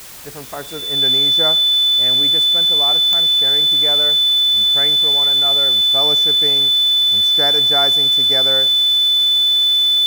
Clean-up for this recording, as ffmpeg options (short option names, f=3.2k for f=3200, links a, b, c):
-af "adeclick=t=4,bandreject=f=3.5k:w=30,afwtdn=0.016"